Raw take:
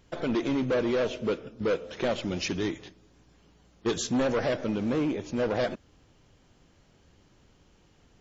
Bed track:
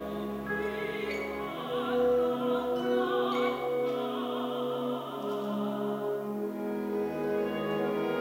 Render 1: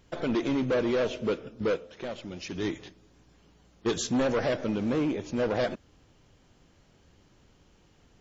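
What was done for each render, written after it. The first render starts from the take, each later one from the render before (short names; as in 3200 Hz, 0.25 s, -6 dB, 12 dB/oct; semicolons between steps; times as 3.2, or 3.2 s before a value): 1.69–2.68 dip -8.5 dB, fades 0.20 s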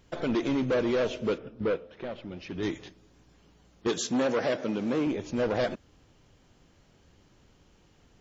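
1.38–2.63 air absorption 220 m; 3.87–5.07 HPF 170 Hz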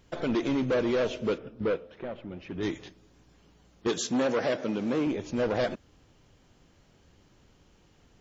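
1.99–2.61 bell 5100 Hz -11 dB 1.3 oct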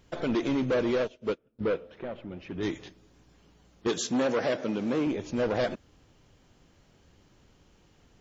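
0.98–1.59 upward expander 2.5:1, over -41 dBFS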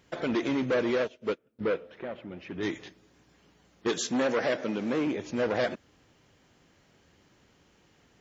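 HPF 140 Hz 6 dB/oct; bell 1900 Hz +4 dB 0.7 oct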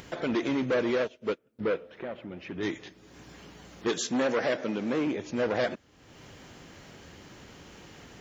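upward compressor, threshold -36 dBFS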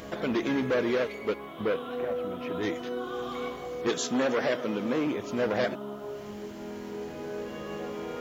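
add bed track -6 dB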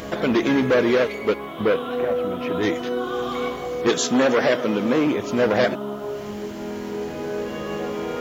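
gain +8.5 dB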